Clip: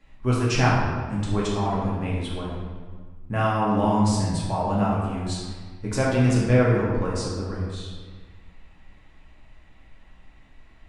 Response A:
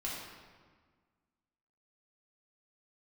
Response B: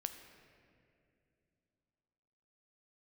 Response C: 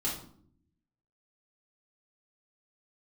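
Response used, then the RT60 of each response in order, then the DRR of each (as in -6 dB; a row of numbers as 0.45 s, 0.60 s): A; 1.6 s, 2.6 s, 0.60 s; -6.0 dB, 7.0 dB, -8.0 dB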